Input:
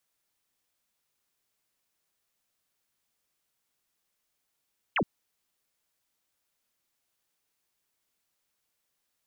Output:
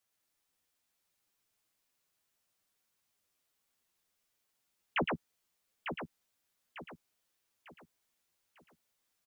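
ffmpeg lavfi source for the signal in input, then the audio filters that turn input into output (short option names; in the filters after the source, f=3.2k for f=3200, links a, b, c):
-f lavfi -i "aevalsrc='0.0708*clip(t/0.002,0,1)*clip((0.07-t)/0.002,0,1)*sin(2*PI*3300*0.07/log(140/3300)*(exp(log(140/3300)*t/0.07)-1))':d=0.07:s=44100"
-filter_complex "[0:a]asplit=2[a][b];[b]aecho=0:1:114:0.668[c];[a][c]amix=inputs=2:normalize=0,flanger=delay=9:depth=3.3:regen=6:speed=0.68:shape=sinusoidal,asplit=2[d][e];[e]aecho=0:1:899|1798|2697|3596:0.422|0.156|0.0577|0.0214[f];[d][f]amix=inputs=2:normalize=0"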